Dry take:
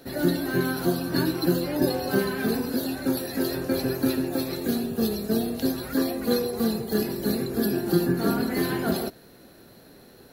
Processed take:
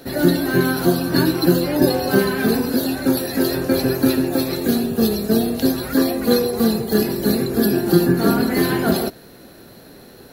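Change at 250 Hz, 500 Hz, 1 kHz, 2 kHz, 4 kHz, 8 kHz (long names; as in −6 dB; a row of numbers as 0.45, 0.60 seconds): +7.5, +7.5, +7.5, +7.5, +7.5, +7.5 decibels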